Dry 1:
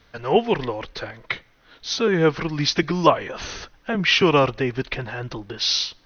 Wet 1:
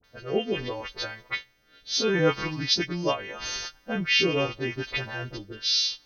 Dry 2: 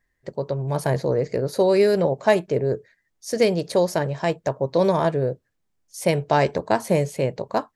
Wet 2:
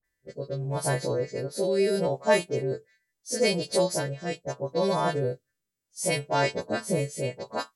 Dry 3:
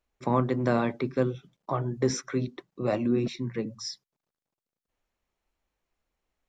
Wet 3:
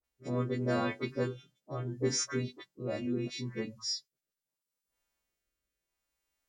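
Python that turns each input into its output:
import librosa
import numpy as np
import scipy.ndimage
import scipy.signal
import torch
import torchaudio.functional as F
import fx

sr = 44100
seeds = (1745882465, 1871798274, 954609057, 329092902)

y = fx.freq_snap(x, sr, grid_st=2)
y = fx.dispersion(y, sr, late='highs', ms=41.0, hz=1200.0)
y = fx.rotary(y, sr, hz=0.75)
y = y * librosa.db_to_amplitude(-4.0)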